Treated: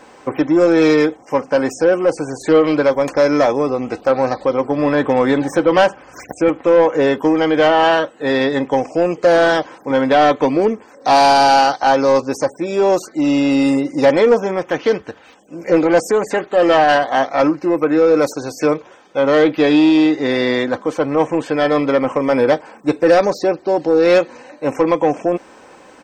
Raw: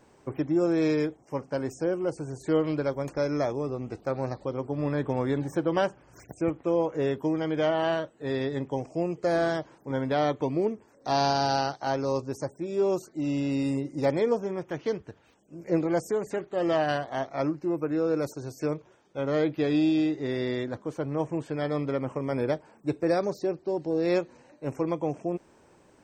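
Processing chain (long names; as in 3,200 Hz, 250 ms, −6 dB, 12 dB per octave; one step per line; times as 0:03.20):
comb filter 3.9 ms, depth 36%
mid-hump overdrive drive 16 dB, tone 3,900 Hz, clips at −11 dBFS
level +9 dB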